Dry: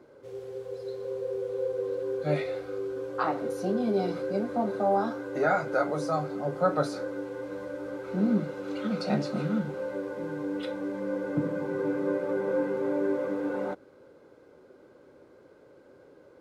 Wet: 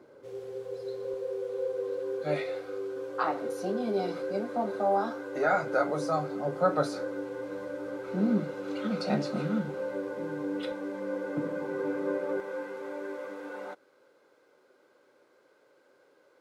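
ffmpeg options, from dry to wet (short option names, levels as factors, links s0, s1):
-af "asetnsamples=n=441:p=0,asendcmd='1.14 highpass f 330;5.53 highpass f 130;10.72 highpass f 340;12.4 highpass f 1300',highpass=f=120:p=1"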